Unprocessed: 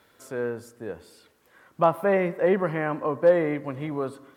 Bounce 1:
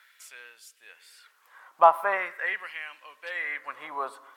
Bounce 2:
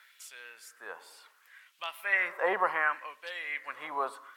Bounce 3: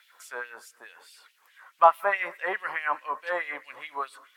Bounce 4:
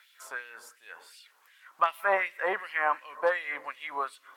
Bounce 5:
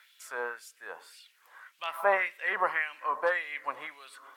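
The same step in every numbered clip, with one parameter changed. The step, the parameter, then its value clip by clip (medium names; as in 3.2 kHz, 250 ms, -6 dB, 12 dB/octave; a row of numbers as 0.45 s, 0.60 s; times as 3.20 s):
LFO high-pass, rate: 0.42 Hz, 0.68 Hz, 4.7 Hz, 2.7 Hz, 1.8 Hz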